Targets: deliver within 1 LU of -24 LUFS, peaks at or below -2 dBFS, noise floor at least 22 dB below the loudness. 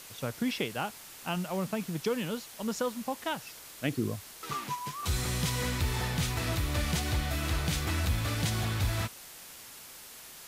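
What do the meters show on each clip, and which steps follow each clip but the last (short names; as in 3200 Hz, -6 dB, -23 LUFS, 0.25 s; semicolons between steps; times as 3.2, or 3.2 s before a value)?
dropouts 2; longest dropout 1.9 ms; noise floor -49 dBFS; noise floor target -55 dBFS; loudness -32.5 LUFS; peak -15.5 dBFS; loudness target -24.0 LUFS
-> interpolate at 4.52/8.35, 1.9 ms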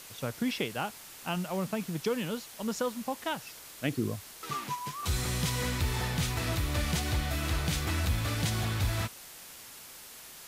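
dropouts 0; noise floor -49 dBFS; noise floor target -55 dBFS
-> denoiser 6 dB, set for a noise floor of -49 dBFS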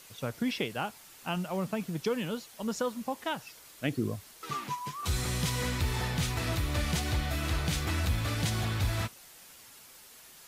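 noise floor -53 dBFS; noise floor target -55 dBFS
-> denoiser 6 dB, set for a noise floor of -53 dBFS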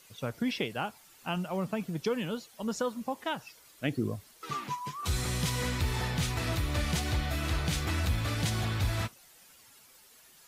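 noise floor -58 dBFS; loudness -33.0 LUFS; peak -15.5 dBFS; loudness target -24.0 LUFS
-> gain +9 dB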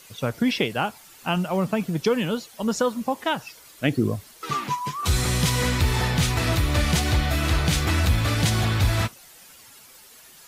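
loudness -24.0 LUFS; peak -6.5 dBFS; noise floor -49 dBFS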